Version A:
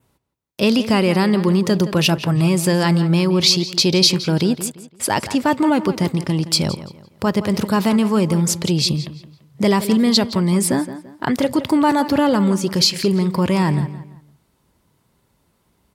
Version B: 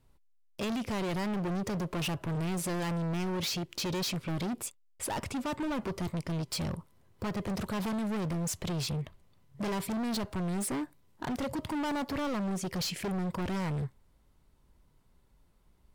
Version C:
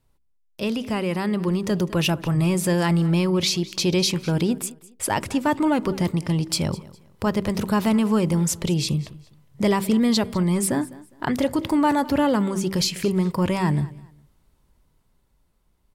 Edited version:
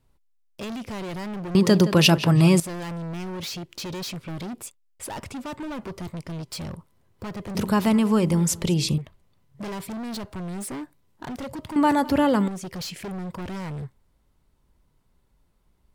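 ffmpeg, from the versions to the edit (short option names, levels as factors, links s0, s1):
-filter_complex "[2:a]asplit=2[s0][s1];[1:a]asplit=4[s2][s3][s4][s5];[s2]atrim=end=1.552[s6];[0:a]atrim=start=1.548:end=2.602[s7];[s3]atrim=start=2.598:end=7.552[s8];[s0]atrim=start=7.548:end=8.982[s9];[s4]atrim=start=8.978:end=11.762[s10];[s1]atrim=start=11.758:end=12.482[s11];[s5]atrim=start=12.478[s12];[s6][s7]acrossfade=d=0.004:c1=hsin:c2=hsin[s13];[s13][s8]acrossfade=d=0.004:c1=hsin:c2=hsin[s14];[s14][s9]acrossfade=d=0.004:c1=hsin:c2=hsin[s15];[s15][s10]acrossfade=d=0.004:c1=hsin:c2=hsin[s16];[s16][s11]acrossfade=d=0.004:c1=hsin:c2=hsin[s17];[s17][s12]acrossfade=d=0.004:c1=hsin:c2=hsin"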